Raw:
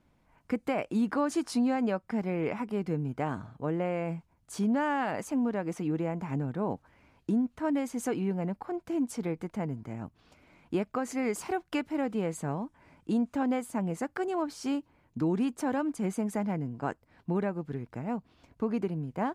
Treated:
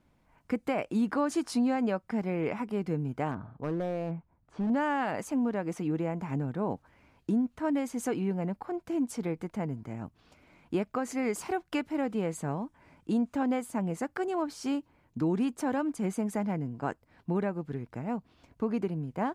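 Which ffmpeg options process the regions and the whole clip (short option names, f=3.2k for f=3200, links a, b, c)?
-filter_complex "[0:a]asettb=1/sr,asplit=3[a][b][c];[a]atrim=end=3.314[d];[b]atrim=start=3.31:end=4.7,asetpts=PTS-STARTPTS,afade=t=in:d=0.004:c=qsin,afade=t=out:st=1.386:d=0.004:c=qsin,lowpass=1.6k,volume=26.5dB,asoftclip=hard,volume=-26.5dB[e];[c]atrim=start=4.696[f];[d][e]acrossfade=d=0.004:c1=hsin:c2=qsin[g];[g][f]acrossfade=d=0.004:c1=qsin:c2=hsin"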